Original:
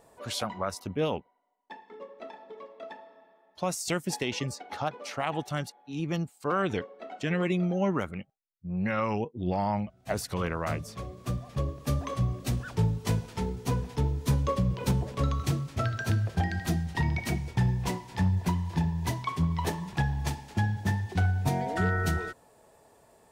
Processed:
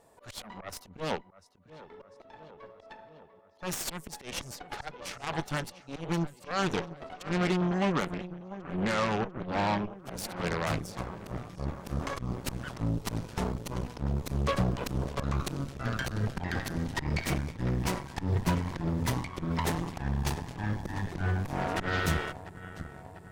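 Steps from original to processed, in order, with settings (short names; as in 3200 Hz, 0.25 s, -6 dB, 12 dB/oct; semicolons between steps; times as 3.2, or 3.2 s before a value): dynamic EQ 160 Hz, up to +3 dB, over -46 dBFS, Q 7.9; auto swell 0.144 s; darkening echo 0.696 s, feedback 73%, low-pass 4500 Hz, level -14 dB; added harmonics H 3 -21 dB, 8 -15 dB, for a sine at -16 dBFS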